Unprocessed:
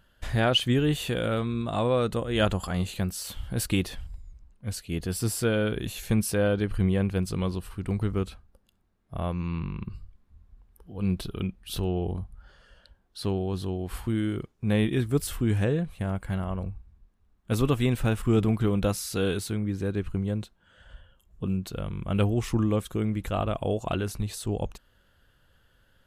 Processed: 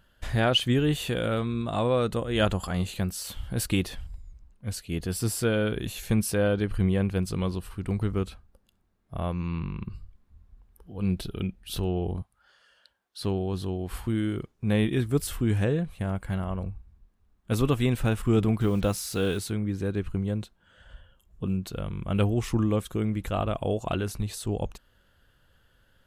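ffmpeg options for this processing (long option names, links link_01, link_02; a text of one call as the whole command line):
ffmpeg -i in.wav -filter_complex "[0:a]asettb=1/sr,asplit=3[link_01][link_02][link_03];[link_01]atrim=end=11.094[link_04];[link_02]atrim=start=11.09:end=11.72,asetpts=PTS-STARTPTS,afade=type=in:duration=0.004:curve=qsin,afade=type=out:start_time=0.626:duration=0.004:curve=qsin,equalizer=frequency=1100:width_type=o:width=0.28:gain=-7.5[link_05];[link_03]atrim=start=11.716[link_06];[link_04][link_05]acrossfade=duration=0.004:curve1=hsin:curve2=qsin[link_07];[link_07][link_06]acrossfade=duration=0.004:curve1=qsin:curve2=hsin,asettb=1/sr,asplit=3[link_08][link_09][link_10];[link_08]atrim=end=12.224[link_11];[link_09]atrim=start=12.22:end=13.21,asetpts=PTS-STARTPTS,afade=type=in:duration=0.004:curve=qsin,afade=type=out:start_time=0.986:duration=0.004:curve=qsin,highpass=frequency=1300:poles=1[link_12];[link_10]atrim=start=13.206[link_13];[link_11][link_12]acrossfade=duration=0.004:curve1=hsin:curve2=qsin[link_14];[link_14][link_13]acrossfade=duration=0.004:curve1=qsin:curve2=hsin,asettb=1/sr,asplit=3[link_15][link_16][link_17];[link_15]atrim=end=18.614[link_18];[link_16]atrim=start=18.61:end=19.39,asetpts=PTS-STARTPTS,afade=type=in:duration=0.004:curve=qsin,afade=type=out:start_time=0.776:duration=0.004:curve=qsin,acrusher=bits=7:mix=0:aa=0.5[link_19];[link_17]atrim=start=19.386[link_20];[link_18][link_19]acrossfade=duration=0.004:curve1=hsin:curve2=qsin[link_21];[link_21][link_20]acrossfade=duration=0.004:curve1=qsin:curve2=hsin" out.wav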